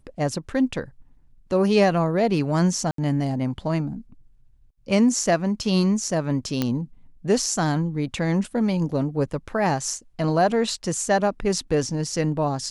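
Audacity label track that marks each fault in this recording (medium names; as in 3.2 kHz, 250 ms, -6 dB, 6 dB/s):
2.910000	2.980000	dropout 73 ms
6.620000	6.620000	pop -9 dBFS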